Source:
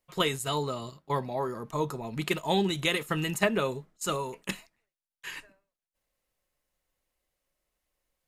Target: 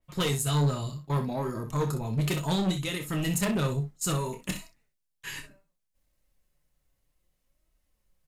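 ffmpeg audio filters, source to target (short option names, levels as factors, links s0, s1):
-filter_complex "[0:a]bass=f=250:g=13,treble=f=4000:g=2,asplit=3[s0][s1][s2];[s0]afade=t=out:st=2.71:d=0.02[s3];[s1]acompressor=threshold=0.0355:ratio=3,afade=t=in:st=2.71:d=0.02,afade=t=out:st=3.12:d=0.02[s4];[s2]afade=t=in:st=3.12:d=0.02[s5];[s3][s4][s5]amix=inputs=3:normalize=0,flanger=delay=3.1:depth=4.2:regen=60:speed=0.65:shape=sinusoidal,asoftclip=type=tanh:threshold=0.0473,aecho=1:1:28|62:0.376|0.299,adynamicequalizer=threshold=0.00251:dfrequency=4000:dqfactor=0.7:tfrequency=4000:tqfactor=0.7:attack=5:release=100:ratio=0.375:range=2.5:mode=boostabove:tftype=highshelf,volume=1.5"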